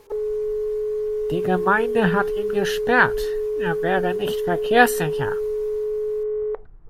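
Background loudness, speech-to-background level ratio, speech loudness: -25.0 LUFS, 3.0 dB, -22.0 LUFS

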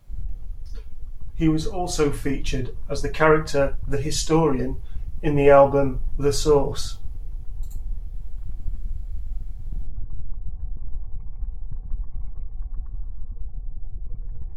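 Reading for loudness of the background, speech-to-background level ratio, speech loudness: -37.5 LUFS, 16.0 dB, -21.5 LUFS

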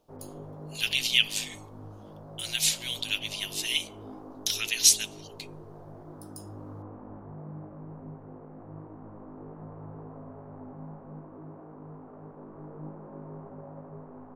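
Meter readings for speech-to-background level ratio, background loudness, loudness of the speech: 19.5 dB, -45.5 LUFS, -26.0 LUFS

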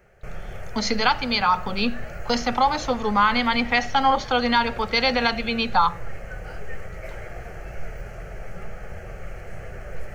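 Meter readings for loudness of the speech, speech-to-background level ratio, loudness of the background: -22.0 LUFS, 16.5 dB, -38.5 LUFS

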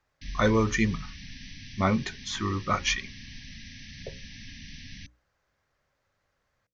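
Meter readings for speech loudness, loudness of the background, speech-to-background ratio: -27.5 LUFS, -44.5 LUFS, 17.0 dB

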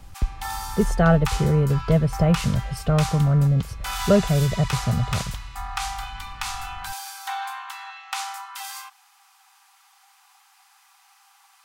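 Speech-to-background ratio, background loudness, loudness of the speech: 10.5 dB, -32.5 LUFS, -22.0 LUFS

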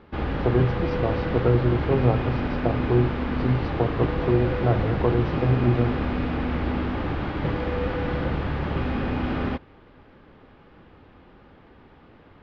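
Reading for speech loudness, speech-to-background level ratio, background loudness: -25.0 LUFS, 2.0 dB, -27.0 LUFS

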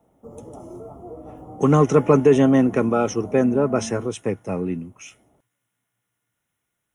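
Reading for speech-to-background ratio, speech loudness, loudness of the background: 18.5 dB, -19.5 LUFS, -38.0 LUFS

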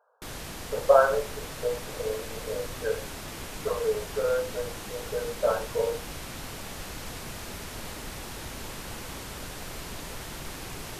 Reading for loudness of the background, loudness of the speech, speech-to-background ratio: -38.5 LUFS, -29.0 LUFS, 9.5 dB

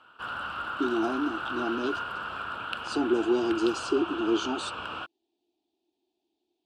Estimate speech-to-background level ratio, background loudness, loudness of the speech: 5.5 dB, -34.5 LUFS, -29.0 LUFS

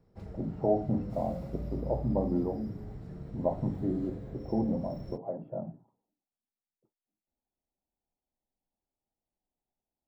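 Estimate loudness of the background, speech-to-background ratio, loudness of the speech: -43.0 LUFS, 9.5 dB, -33.5 LUFS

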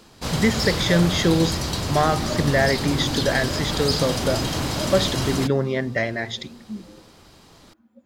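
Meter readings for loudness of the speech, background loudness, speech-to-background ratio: -23.0 LUFS, -25.0 LUFS, 2.0 dB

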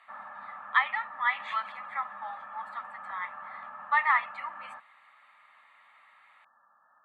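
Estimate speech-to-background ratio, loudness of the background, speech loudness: 13.0 dB, -43.5 LUFS, -30.5 LUFS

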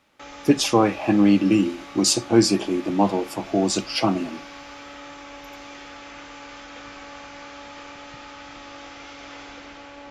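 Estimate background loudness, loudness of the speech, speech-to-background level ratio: -40.0 LUFS, -21.0 LUFS, 19.0 dB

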